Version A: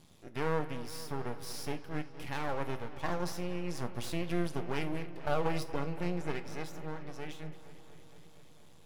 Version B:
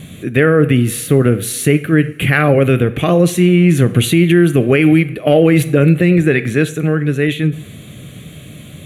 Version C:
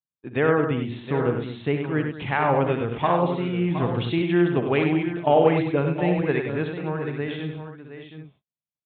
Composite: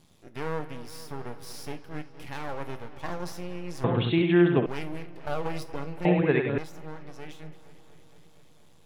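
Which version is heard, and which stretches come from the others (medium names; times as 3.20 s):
A
3.84–4.66 s: from C
6.05–6.58 s: from C
not used: B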